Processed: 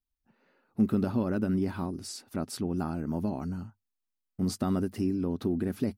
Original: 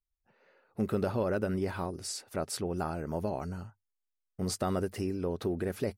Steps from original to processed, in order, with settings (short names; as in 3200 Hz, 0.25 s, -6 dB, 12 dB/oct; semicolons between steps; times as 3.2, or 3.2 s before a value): graphic EQ 250/500/2000/8000 Hz +11/-8/-4/-4 dB